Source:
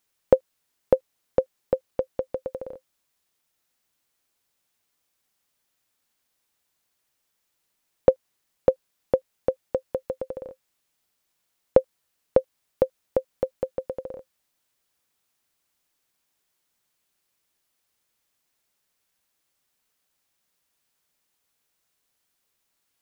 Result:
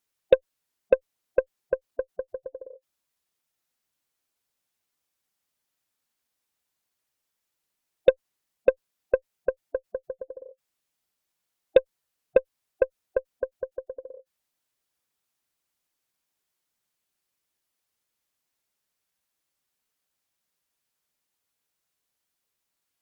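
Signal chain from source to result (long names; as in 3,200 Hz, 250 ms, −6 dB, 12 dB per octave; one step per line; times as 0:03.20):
gate on every frequency bin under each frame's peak −15 dB strong
harmonic generator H 5 −30 dB, 6 −33 dB, 7 −21 dB, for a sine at −3.5 dBFS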